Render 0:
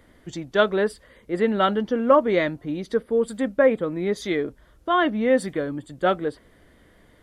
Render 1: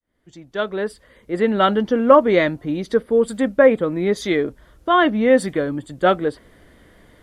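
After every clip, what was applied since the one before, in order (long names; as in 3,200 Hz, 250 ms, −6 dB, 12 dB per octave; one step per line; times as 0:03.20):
fade in at the beginning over 1.82 s
level +5 dB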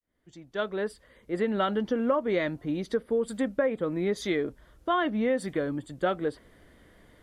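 downward compressor 6 to 1, threshold −16 dBFS, peak gain reduction 9.5 dB
level −6.5 dB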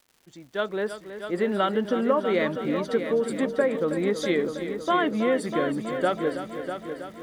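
high-pass filter 140 Hz 6 dB per octave
surface crackle 240 per second −49 dBFS
echo machine with several playback heads 323 ms, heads first and second, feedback 56%, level −11 dB
level +3 dB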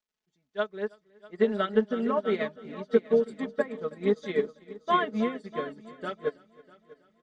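low-pass filter 7,100 Hz 24 dB per octave
comb filter 4.7 ms, depth 82%
expander for the loud parts 2.5 to 1, over −33 dBFS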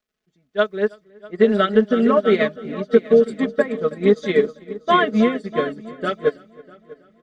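parametric band 920 Hz −14.5 dB 0.2 octaves
in parallel at +3 dB: brickwall limiter −19.5 dBFS, peak gain reduction 10 dB
on the sum: one half of a high-frequency compander decoder only
level +4.5 dB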